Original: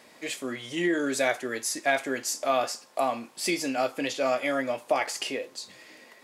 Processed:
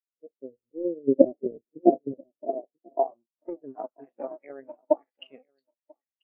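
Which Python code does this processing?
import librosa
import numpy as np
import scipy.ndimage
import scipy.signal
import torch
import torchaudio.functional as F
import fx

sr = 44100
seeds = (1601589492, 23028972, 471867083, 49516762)

p1 = fx.cycle_switch(x, sr, every=2, mode='muted')
p2 = fx.env_lowpass_down(p1, sr, base_hz=1200.0, full_db=-23.0)
p3 = fx.low_shelf(p2, sr, hz=420.0, db=10.0, at=(1.07, 2.12), fade=0.02)
p4 = fx.transient(p3, sr, attack_db=7, sustain_db=-2)
p5 = fx.filter_sweep_lowpass(p4, sr, from_hz=590.0, to_hz=3300.0, start_s=2.53, end_s=4.82, q=1.3)
p6 = p5 + fx.echo_single(p5, sr, ms=989, db=-13.0, dry=0)
p7 = fx.spectral_expand(p6, sr, expansion=2.5)
y = p7 * 10.0 ** (2.0 / 20.0)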